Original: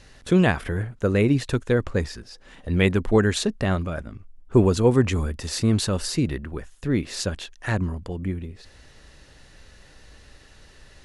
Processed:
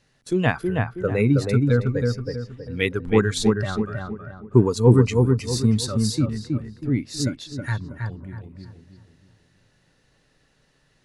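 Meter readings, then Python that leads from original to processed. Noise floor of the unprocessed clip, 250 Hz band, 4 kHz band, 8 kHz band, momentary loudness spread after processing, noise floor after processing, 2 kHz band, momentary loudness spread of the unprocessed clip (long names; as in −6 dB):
−51 dBFS, +1.0 dB, −0.5 dB, 0.0 dB, 15 LU, −64 dBFS, −0.5 dB, 14 LU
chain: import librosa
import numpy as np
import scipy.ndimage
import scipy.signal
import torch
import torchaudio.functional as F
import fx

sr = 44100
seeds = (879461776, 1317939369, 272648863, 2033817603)

p1 = fx.low_shelf_res(x, sr, hz=100.0, db=-7.0, q=3.0)
p2 = fx.cheby_harmonics(p1, sr, harmonics=(8,), levels_db=(-35,), full_scale_db=-3.5)
p3 = fx.noise_reduce_blind(p2, sr, reduce_db=13)
y = p3 + fx.echo_filtered(p3, sr, ms=321, feedback_pct=39, hz=1700.0, wet_db=-3.0, dry=0)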